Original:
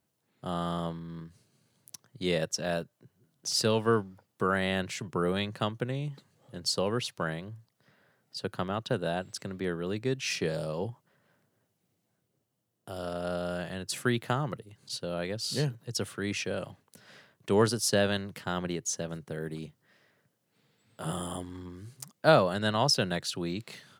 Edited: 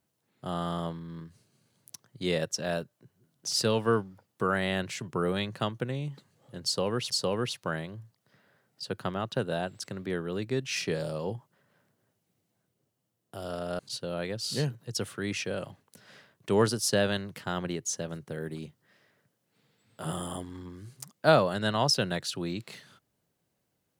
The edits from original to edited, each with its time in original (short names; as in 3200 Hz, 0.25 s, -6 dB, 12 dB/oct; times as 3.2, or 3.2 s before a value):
6.64–7.1 loop, 2 plays
13.33–14.79 cut